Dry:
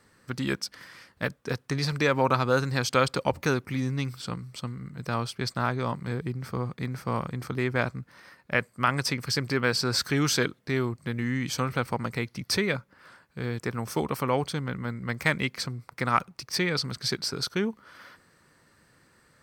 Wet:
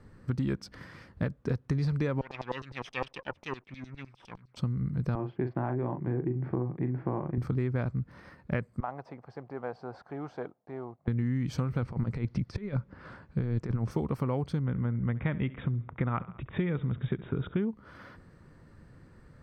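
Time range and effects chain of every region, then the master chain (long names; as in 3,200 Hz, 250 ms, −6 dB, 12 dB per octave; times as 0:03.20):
0:02.21–0:04.57: lower of the sound and its delayed copy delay 0.34 ms + high-shelf EQ 9,800 Hz −3.5 dB + auto-filter band-pass saw down 9.8 Hz 770–5,800 Hz
0:05.15–0:07.38: loudspeaker in its box 190–2,200 Hz, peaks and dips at 210 Hz −7 dB, 340 Hz +9 dB, 480 Hz −5 dB, 770 Hz +4 dB, 1,300 Hz −10 dB, 2,200 Hz −3 dB + double-tracking delay 40 ms −8 dB
0:08.80–0:11.08: one scale factor per block 5 bits + resonant band-pass 750 Hz, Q 4.7
0:11.82–0:13.91: low-pass filter 6,800 Hz + compressor whose output falls as the input rises −33 dBFS, ratio −0.5
0:14.65–0:17.62: linear-phase brick-wall low-pass 3,800 Hz + repeating echo 68 ms, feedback 46%, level −20 dB
whole clip: spectral tilt −4 dB per octave; downward compressor, threshold −27 dBFS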